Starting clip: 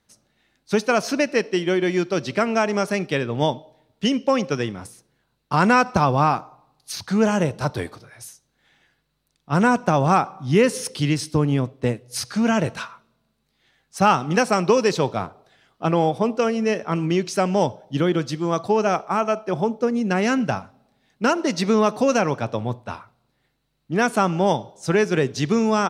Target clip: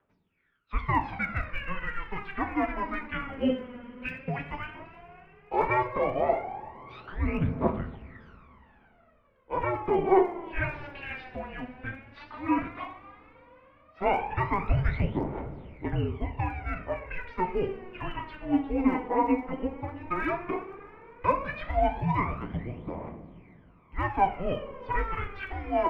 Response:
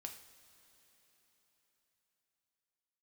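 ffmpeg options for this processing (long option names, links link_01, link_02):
-filter_complex "[0:a]highpass=frequency=530:width_type=q:width=0.5412,highpass=frequency=530:width_type=q:width=1.307,lowpass=frequency=3000:width_type=q:width=0.5176,lowpass=frequency=3000:width_type=q:width=0.7071,lowpass=frequency=3000:width_type=q:width=1.932,afreqshift=-380[link_01];[1:a]atrim=start_sample=2205[link_02];[link_01][link_02]afir=irnorm=-1:irlink=0,aphaser=in_gain=1:out_gain=1:delay=4.2:decay=0.75:speed=0.13:type=triangular,volume=-3dB"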